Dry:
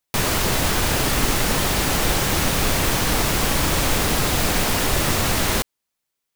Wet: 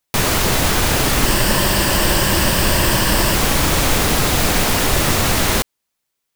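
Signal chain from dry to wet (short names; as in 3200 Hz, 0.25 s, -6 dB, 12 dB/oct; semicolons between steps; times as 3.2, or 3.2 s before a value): 1.26–3.35 ripple EQ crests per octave 1.3, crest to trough 7 dB; gain +4 dB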